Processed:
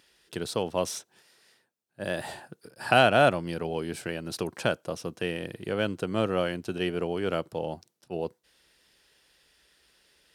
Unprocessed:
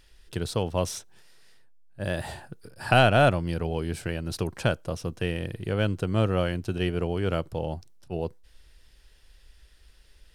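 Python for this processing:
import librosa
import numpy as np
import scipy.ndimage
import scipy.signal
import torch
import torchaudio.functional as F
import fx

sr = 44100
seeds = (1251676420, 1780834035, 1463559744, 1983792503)

y = scipy.signal.sosfilt(scipy.signal.butter(2, 200.0, 'highpass', fs=sr, output='sos'), x)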